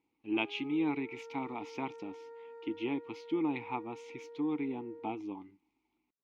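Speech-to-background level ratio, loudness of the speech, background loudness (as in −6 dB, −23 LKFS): 13.5 dB, −37.0 LKFS, −50.5 LKFS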